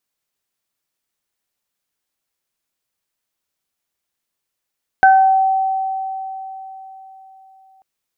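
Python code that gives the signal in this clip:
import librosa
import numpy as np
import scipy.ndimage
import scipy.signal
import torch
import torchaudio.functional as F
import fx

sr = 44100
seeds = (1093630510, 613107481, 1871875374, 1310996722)

y = fx.additive(sr, length_s=2.79, hz=767.0, level_db=-6.0, upper_db=(-3,), decay_s=3.94, upper_decays_s=(0.47,))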